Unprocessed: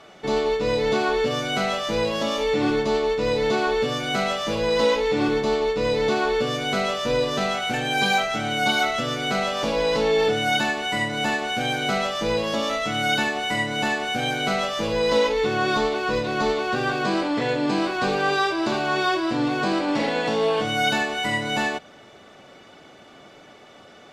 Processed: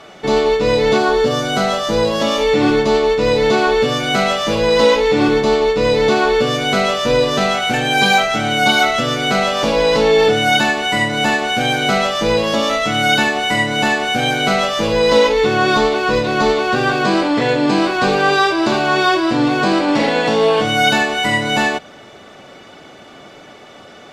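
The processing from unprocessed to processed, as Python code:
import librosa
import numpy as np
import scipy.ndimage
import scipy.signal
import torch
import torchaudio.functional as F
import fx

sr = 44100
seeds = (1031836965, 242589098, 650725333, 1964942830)

y = fx.peak_eq(x, sr, hz=2400.0, db=-7.5, octaves=0.59, at=(0.98, 2.2))
y = y * librosa.db_to_amplitude(8.0)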